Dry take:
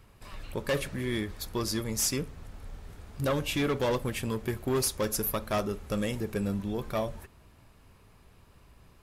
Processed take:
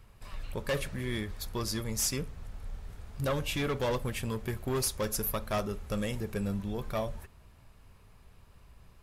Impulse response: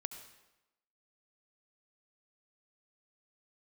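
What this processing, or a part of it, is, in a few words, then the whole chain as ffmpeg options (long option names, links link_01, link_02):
low shelf boost with a cut just above: -af "lowshelf=frequency=61:gain=7,equalizer=frequency=310:width_type=o:width=0.67:gain=-4.5,volume=-2dB"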